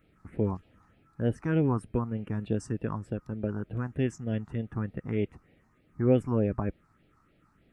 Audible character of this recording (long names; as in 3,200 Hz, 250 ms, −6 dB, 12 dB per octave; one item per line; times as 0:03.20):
phaser sweep stages 4, 3.3 Hz, lowest notch 510–1,100 Hz